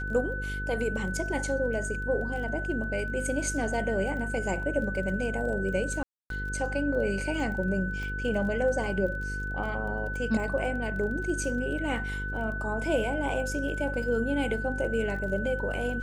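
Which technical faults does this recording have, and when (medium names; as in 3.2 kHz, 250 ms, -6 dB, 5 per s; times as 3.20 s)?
buzz 50 Hz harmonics 10 -35 dBFS
crackle 19 per s -38 dBFS
whine 1.5 kHz -34 dBFS
6.03–6.30 s: dropout 272 ms
8.03 s: pop -27 dBFS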